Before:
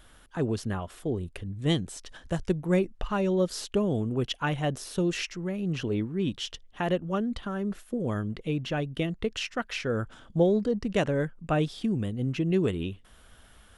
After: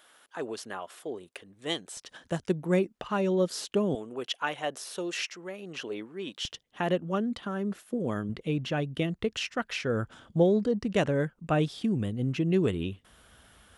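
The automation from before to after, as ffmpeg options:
-af "asetnsamples=n=441:p=0,asendcmd='1.97 highpass f 160;3.95 highpass f 480;6.45 highpass f 140;8.29 highpass f 64',highpass=490"

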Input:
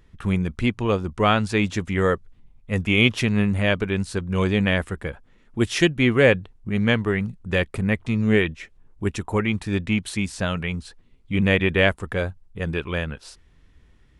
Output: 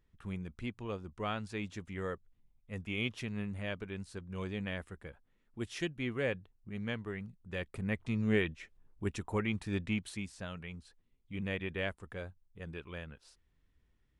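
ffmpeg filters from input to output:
-af "volume=-11dB,afade=t=in:st=7.53:d=0.57:silence=0.446684,afade=t=out:st=9.87:d=0.48:silence=0.446684"

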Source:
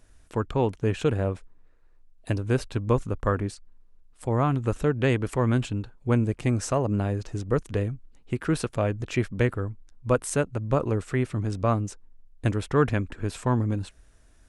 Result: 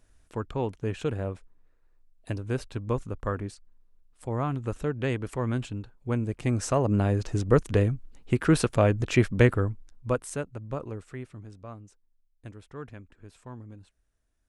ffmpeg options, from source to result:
-af "volume=4dB,afade=t=in:st=6.21:d=1.17:silence=0.334965,afade=t=out:st=9.6:d=0.62:silence=0.281838,afade=t=out:st=10.22:d=1.4:silence=0.251189"

